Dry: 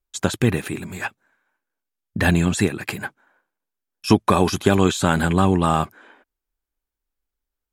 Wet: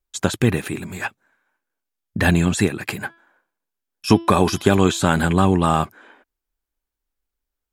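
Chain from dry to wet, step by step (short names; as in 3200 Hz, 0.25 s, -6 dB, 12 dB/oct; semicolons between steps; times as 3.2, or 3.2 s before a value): 3–5.08 de-hum 335.1 Hz, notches 16; gain +1 dB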